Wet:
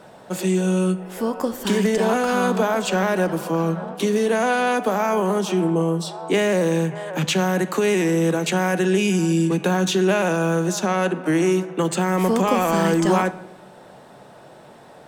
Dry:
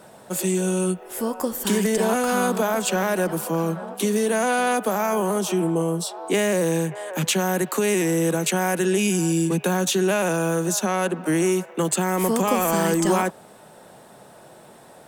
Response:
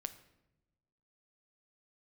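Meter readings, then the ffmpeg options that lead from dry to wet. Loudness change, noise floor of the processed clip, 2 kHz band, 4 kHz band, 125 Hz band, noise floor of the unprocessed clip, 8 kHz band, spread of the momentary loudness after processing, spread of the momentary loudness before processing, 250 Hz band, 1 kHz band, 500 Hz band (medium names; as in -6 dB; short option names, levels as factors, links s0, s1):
+1.5 dB, -46 dBFS, +2.0 dB, +1.0 dB, +3.0 dB, -48 dBFS, -5.0 dB, 6 LU, 5 LU, +2.5 dB, +2.0 dB, +2.0 dB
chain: -filter_complex "[0:a]asplit=2[s0][s1];[1:a]atrim=start_sample=2205,lowpass=6300[s2];[s1][s2]afir=irnorm=-1:irlink=0,volume=2.51[s3];[s0][s3]amix=inputs=2:normalize=0,volume=0.447"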